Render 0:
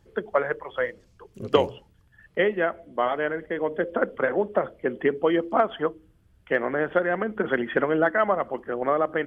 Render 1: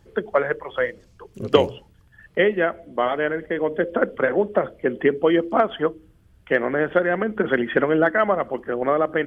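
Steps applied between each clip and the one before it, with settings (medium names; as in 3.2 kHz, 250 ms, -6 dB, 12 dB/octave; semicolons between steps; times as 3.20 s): dynamic bell 950 Hz, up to -4 dB, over -36 dBFS, Q 1.1; trim +5 dB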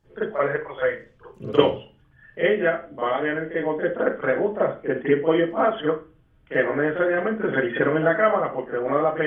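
reverberation, pre-delay 37 ms, DRR -12 dB; trim -13.5 dB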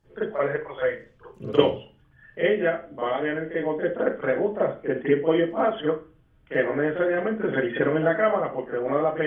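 dynamic bell 1.3 kHz, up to -4 dB, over -35 dBFS, Q 1.3; trim -1 dB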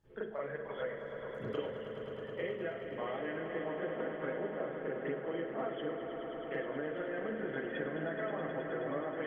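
compression, threshold -30 dBFS, peak gain reduction 18 dB; on a send: echo with a slow build-up 106 ms, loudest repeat 5, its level -10.5 dB; on the sum: trim -6.5 dB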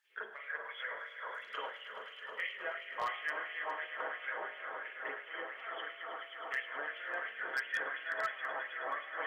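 LFO high-pass sine 2.9 Hz 930–2600 Hz; wavefolder -29.5 dBFS; de-hum 51.69 Hz, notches 28; trim +3 dB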